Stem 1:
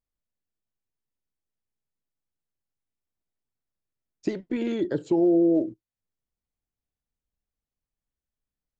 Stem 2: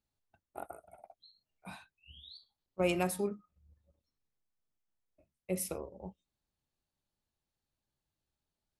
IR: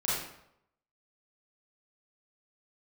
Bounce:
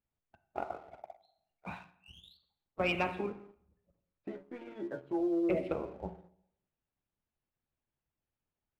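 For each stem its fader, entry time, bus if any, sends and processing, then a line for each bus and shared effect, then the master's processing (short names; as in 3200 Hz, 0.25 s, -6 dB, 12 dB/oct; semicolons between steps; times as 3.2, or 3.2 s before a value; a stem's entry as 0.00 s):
-10.5 dB, 0.00 s, send -24 dB, band shelf 940 Hz +9 dB; metallic resonator 67 Hz, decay 0.29 s, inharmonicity 0.002; de-hum 46.33 Hz, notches 10
+3.0 dB, 0.00 s, send -15 dB, de-esser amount 70%; harmonic-percussive split harmonic -13 dB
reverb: on, RT60 0.75 s, pre-delay 30 ms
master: inverse Chebyshev low-pass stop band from 5700 Hz, stop band 40 dB; sample leveller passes 1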